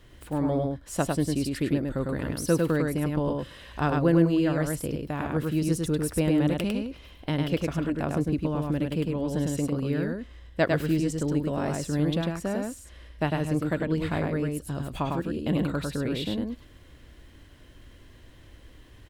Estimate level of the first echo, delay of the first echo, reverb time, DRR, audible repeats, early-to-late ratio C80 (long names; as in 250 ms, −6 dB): −3.0 dB, 102 ms, no reverb audible, no reverb audible, 1, no reverb audible